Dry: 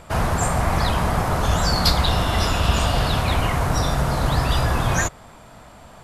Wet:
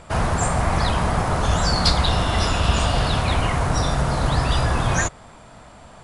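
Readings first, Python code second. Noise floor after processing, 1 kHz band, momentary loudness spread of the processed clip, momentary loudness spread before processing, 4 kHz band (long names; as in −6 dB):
−45 dBFS, 0.0 dB, 3 LU, 3 LU, 0.0 dB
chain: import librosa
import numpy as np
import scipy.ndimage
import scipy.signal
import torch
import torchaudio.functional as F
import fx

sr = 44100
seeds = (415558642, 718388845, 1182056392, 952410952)

y = fx.brickwall_lowpass(x, sr, high_hz=11000.0)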